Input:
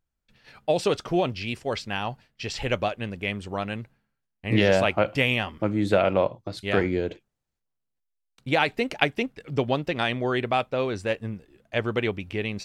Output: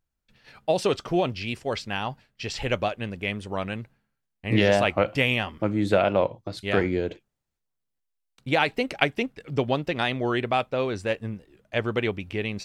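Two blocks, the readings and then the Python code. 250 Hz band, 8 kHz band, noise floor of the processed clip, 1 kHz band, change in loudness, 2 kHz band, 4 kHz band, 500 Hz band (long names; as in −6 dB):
0.0 dB, 0.0 dB, −81 dBFS, 0.0 dB, 0.0 dB, 0.0 dB, 0.0 dB, 0.0 dB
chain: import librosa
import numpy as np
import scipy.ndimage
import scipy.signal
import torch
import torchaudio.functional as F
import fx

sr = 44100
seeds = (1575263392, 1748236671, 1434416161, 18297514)

y = fx.record_warp(x, sr, rpm=45.0, depth_cents=100.0)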